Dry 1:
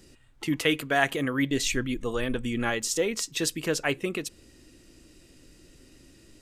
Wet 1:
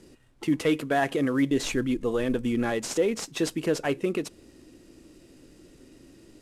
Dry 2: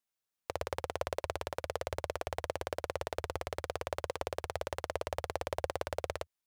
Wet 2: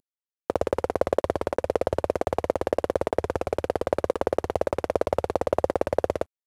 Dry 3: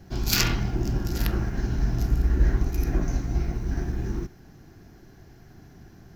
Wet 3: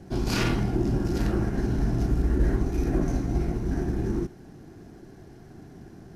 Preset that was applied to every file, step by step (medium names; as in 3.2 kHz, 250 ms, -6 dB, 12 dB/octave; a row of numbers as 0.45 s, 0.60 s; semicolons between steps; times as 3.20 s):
CVSD coder 64 kbps; peaking EQ 350 Hz +9.5 dB 3 oct; in parallel at -2 dB: peak limiter -14.5 dBFS; on the sum: normalise loudness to -27 LUFS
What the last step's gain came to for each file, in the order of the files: -9.0 dB, +2.0 dB, -8.0 dB